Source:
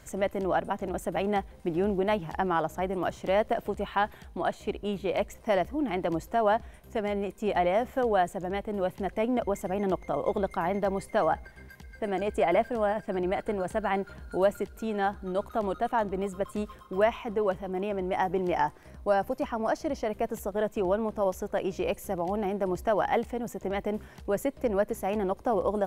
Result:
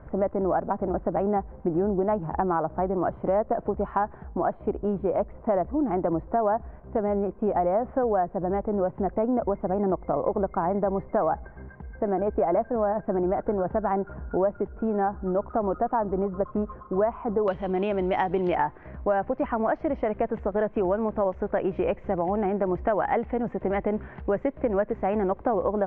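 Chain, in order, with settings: LPF 1300 Hz 24 dB/oct, from 17.48 s 4000 Hz, from 18.55 s 2100 Hz; compressor 3:1, threshold -30 dBFS, peak gain reduction 9 dB; gain +7.5 dB

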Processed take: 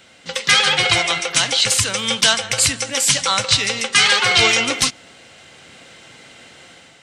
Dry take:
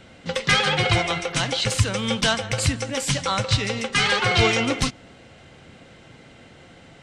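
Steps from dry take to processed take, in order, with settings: AGC gain up to 5.5 dB; tilt +3 dB/oct; gain -1 dB

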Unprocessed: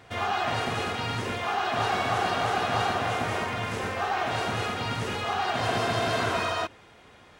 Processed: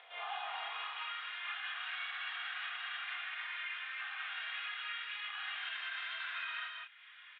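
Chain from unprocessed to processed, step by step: upward compressor, threshold -35 dBFS; on a send: echo 0.179 s -4 dB; on the sum: chorus voices 6, 0.44 Hz, delay 27 ms, depth 4.7 ms; limiter -21.5 dBFS, peak gain reduction 7 dB; high-pass sweep 620 Hz -> 1600 Hz, 0.06–1.6; Chebyshev band-pass 280–3500 Hz, order 5; differentiator; gain +2 dB

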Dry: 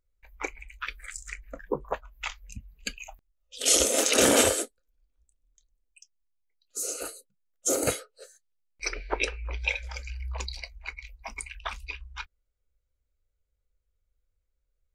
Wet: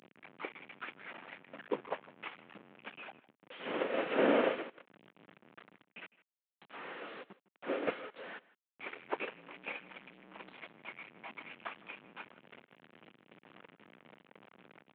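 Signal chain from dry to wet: delta modulation 16 kbps, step -28.5 dBFS; HPF 190 Hz 24 dB/oct; on a send: echo 0.157 s -15 dB; on the sum: upward expander 1.5:1, over -47 dBFS; gain -4 dB

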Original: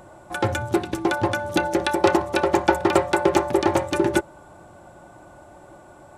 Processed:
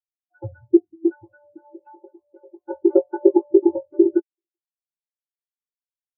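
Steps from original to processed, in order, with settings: nonlinear frequency compression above 1500 Hz 1.5:1; 1.08–2.7 compressor 12:1, threshold -21 dBFS, peak gain reduction 10.5 dB; outdoor echo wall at 66 m, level -19 dB; spectral expander 4:1; gain +2.5 dB

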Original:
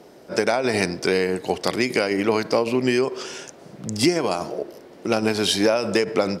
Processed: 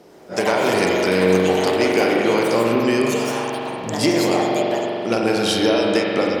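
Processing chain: echoes that change speed 99 ms, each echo +5 st, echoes 3, each echo -6 dB; spring tank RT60 3.1 s, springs 43 ms, chirp 20 ms, DRR -1.5 dB; gain -1 dB

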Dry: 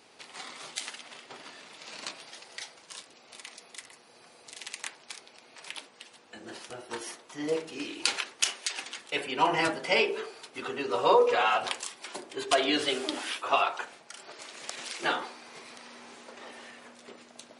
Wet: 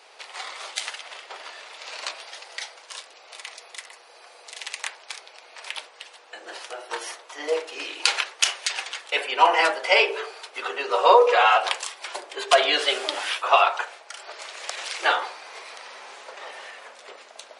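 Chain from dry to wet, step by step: HPF 490 Hz 24 dB/oct; high shelf 6800 Hz -8 dB; gain +8.5 dB

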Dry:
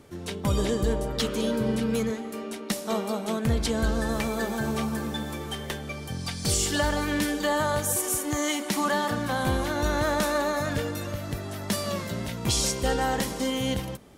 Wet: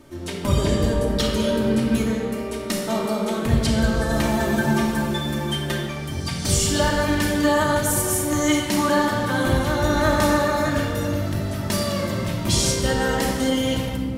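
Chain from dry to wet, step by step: 4.09–5.8 comb 5.7 ms, depth 64%; reverb RT60 1.7 s, pre-delay 3 ms, DRR -2 dB; gain +1 dB

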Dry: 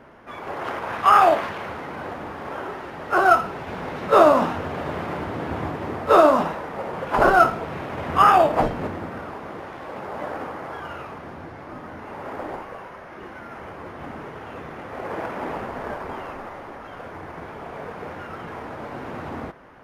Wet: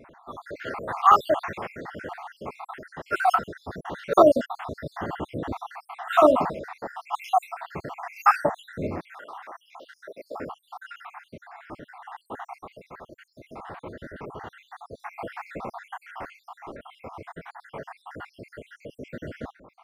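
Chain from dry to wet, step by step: random spectral dropouts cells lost 69%; 9.05–10.35 HPF 970 Hz -> 350 Hz 12 dB/oct

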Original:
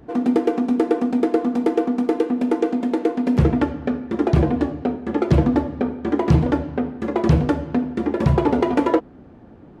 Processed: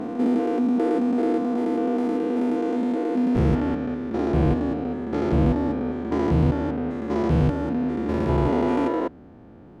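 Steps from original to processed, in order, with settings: stepped spectrum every 0.2 s

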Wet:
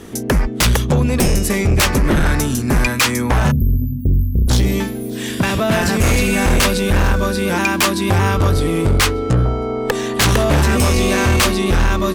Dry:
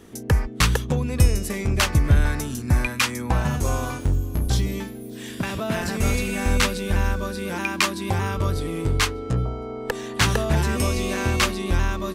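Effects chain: spectral delete 3.51–4.47, 260–12000 Hz; sine folder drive 13 dB, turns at -4 dBFS; gain -5.5 dB

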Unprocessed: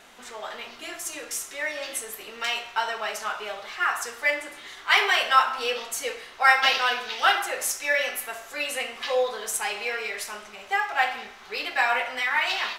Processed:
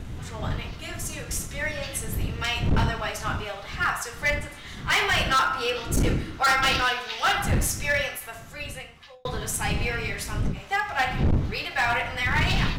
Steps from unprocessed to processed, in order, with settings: wind noise 130 Hz -27 dBFS; 5.26–6.89 small resonant body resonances 320/1400 Hz, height 12 dB, ringing for 45 ms; 7.89–9.25 fade out; hard clip -17.5 dBFS, distortion -8 dB; ending taper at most 150 dB/s

